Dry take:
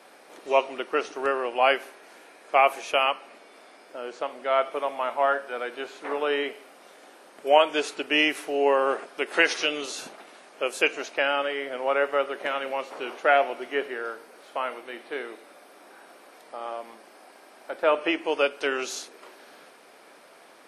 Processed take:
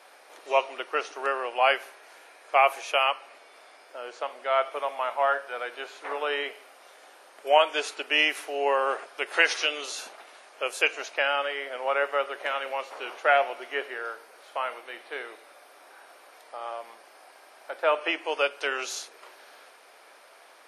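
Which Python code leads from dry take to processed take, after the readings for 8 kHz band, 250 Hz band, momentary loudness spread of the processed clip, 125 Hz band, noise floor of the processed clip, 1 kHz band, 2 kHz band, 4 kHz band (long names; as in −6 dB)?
0.0 dB, −10.0 dB, 15 LU, can't be measured, −54 dBFS, −0.5 dB, 0.0 dB, 0.0 dB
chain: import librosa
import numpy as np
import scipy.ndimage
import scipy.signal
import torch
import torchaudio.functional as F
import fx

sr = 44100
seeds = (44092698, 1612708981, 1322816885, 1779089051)

y = scipy.signal.sosfilt(scipy.signal.butter(2, 550.0, 'highpass', fs=sr, output='sos'), x)
y = fx.notch(y, sr, hz=7900.0, q=23.0)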